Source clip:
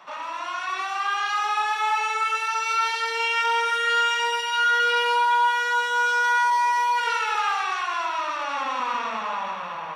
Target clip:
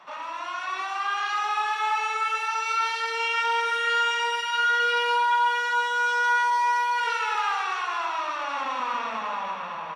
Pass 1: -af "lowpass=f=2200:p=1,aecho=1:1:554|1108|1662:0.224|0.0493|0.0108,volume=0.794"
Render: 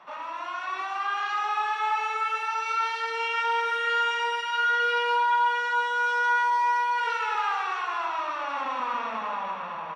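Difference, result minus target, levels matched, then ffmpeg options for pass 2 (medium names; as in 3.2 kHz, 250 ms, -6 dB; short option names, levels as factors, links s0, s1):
8 kHz band -5.5 dB
-af "lowpass=f=7500:p=1,aecho=1:1:554|1108|1662:0.224|0.0493|0.0108,volume=0.794"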